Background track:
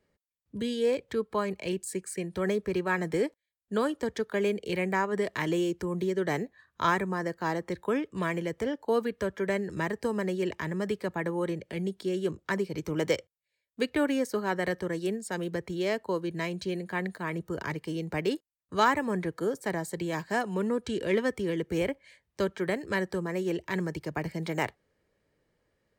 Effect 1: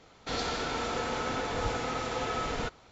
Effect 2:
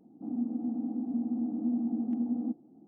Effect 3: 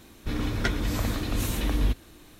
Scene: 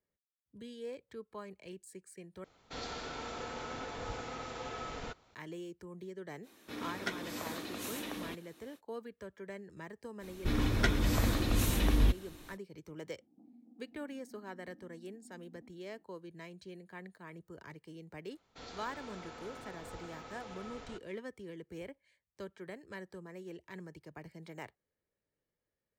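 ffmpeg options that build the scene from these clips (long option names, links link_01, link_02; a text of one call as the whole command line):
ffmpeg -i bed.wav -i cue0.wav -i cue1.wav -i cue2.wav -filter_complex "[1:a]asplit=2[link_01][link_02];[3:a]asplit=2[link_03][link_04];[0:a]volume=-16.5dB[link_05];[link_03]highpass=280[link_06];[2:a]acompressor=threshold=-48dB:ratio=4:attack=71:release=71:knee=1:detection=rms[link_07];[link_05]asplit=2[link_08][link_09];[link_08]atrim=end=2.444[link_10];[link_01]atrim=end=2.91,asetpts=PTS-STARTPTS,volume=-9.5dB[link_11];[link_09]atrim=start=5.346[link_12];[link_06]atrim=end=2.39,asetpts=PTS-STARTPTS,volume=-8dB,afade=type=in:duration=0.05,afade=type=out:start_time=2.34:duration=0.05,adelay=283122S[link_13];[link_04]atrim=end=2.39,asetpts=PTS-STARTPTS,volume=-2dB,afade=type=in:duration=0.05,afade=type=out:start_time=2.34:duration=0.05,adelay=10190[link_14];[link_07]atrim=end=2.87,asetpts=PTS-STARTPTS,volume=-15dB,afade=type=in:duration=0.004:curve=hsin,afade=type=out:start_time=2.866:duration=0.004:curve=hsin,adelay=13170[link_15];[link_02]atrim=end=2.91,asetpts=PTS-STARTPTS,volume=-16.5dB,afade=type=in:duration=0.004:curve=hsin,afade=type=out:start_time=2.906:duration=0.004:curve=hsin,adelay=18290[link_16];[link_10][link_11]acrossfade=duration=0.004:curve1=hsin:curve2=hsin[link_17];[link_17][link_12]acrossfade=duration=0.004:curve1=hsin:curve2=hsin[link_18];[link_18][link_13][link_14][link_15][link_16]amix=inputs=5:normalize=0" out.wav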